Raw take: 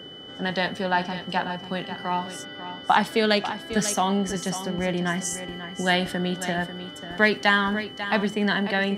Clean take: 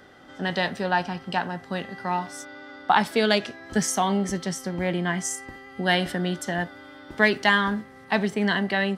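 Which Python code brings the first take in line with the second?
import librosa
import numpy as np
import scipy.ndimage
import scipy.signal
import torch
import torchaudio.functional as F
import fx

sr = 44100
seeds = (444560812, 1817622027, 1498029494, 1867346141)

y = fx.notch(x, sr, hz=3000.0, q=30.0)
y = fx.noise_reduce(y, sr, print_start_s=0.0, print_end_s=0.5, reduce_db=6.0)
y = fx.fix_echo_inverse(y, sr, delay_ms=543, level_db=-11.5)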